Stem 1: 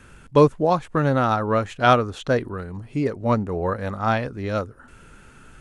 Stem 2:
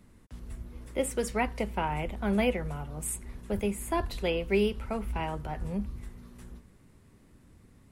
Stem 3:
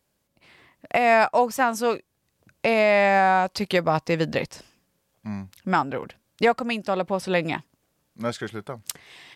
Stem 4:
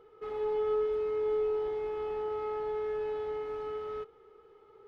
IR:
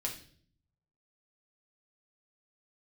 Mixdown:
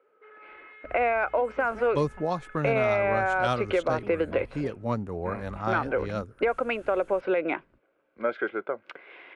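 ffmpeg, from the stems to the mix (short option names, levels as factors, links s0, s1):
-filter_complex "[0:a]adelay=1600,volume=0.422[s0];[1:a]lowpass=2900,alimiter=limit=0.0668:level=0:latency=1:release=439,adelay=400,volume=0.355[s1];[2:a]equalizer=f=350:t=o:w=1:g=9.5,bandreject=f=1800:w=6.7,volume=1,asplit=2[s2][s3];[3:a]aeval=exprs='0.0126*(abs(mod(val(0)/0.0126+3,4)-2)-1)':c=same,volume=0.355[s4];[s3]apad=whole_len=366802[s5];[s1][s5]sidechaingate=range=0.0224:threshold=0.00316:ratio=16:detection=peak[s6];[s2][s4]amix=inputs=2:normalize=0,highpass=440,equalizer=f=540:t=q:w=4:g=6,equalizer=f=850:t=q:w=4:g=-3,equalizer=f=1500:t=q:w=4:g=9,equalizer=f=2300:t=q:w=4:g=4,lowpass=f=2400:w=0.5412,lowpass=f=2400:w=1.3066,alimiter=limit=0.237:level=0:latency=1:release=73,volume=1[s7];[s0][s6][s7]amix=inputs=3:normalize=0,acrossover=split=130|3000[s8][s9][s10];[s9]acompressor=threshold=0.0708:ratio=2.5[s11];[s8][s11][s10]amix=inputs=3:normalize=0"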